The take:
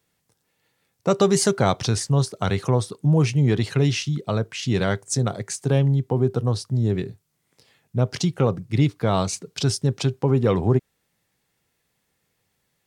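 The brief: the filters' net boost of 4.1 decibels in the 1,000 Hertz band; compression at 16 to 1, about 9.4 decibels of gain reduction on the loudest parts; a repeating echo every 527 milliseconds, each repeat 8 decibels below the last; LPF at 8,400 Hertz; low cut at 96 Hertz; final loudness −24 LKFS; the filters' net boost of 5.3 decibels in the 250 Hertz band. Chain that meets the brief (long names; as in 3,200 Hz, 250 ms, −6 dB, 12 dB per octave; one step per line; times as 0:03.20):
high-pass filter 96 Hz
low-pass filter 8,400 Hz
parametric band 250 Hz +7.5 dB
parametric band 1,000 Hz +5 dB
downward compressor 16 to 1, threshold −19 dBFS
repeating echo 527 ms, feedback 40%, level −8 dB
level +1.5 dB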